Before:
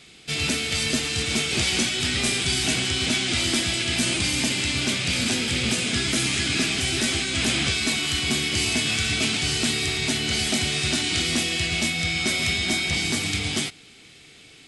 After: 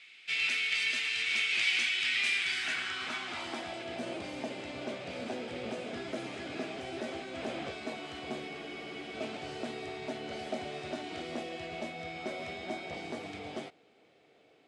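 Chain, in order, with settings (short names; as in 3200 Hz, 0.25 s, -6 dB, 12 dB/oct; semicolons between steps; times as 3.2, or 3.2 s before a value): band-pass sweep 2300 Hz -> 600 Hz, 2.29–3.96; spectral freeze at 8.5, 0.63 s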